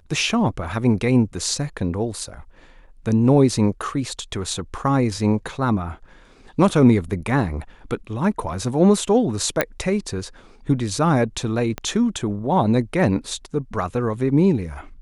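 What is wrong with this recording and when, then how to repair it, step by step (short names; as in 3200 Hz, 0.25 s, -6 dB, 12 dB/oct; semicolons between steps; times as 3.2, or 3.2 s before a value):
9.61 pop -4 dBFS
11.78 pop -13 dBFS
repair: de-click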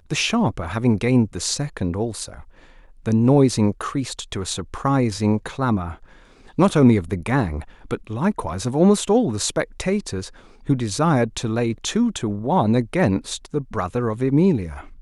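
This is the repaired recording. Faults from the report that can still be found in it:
11.78 pop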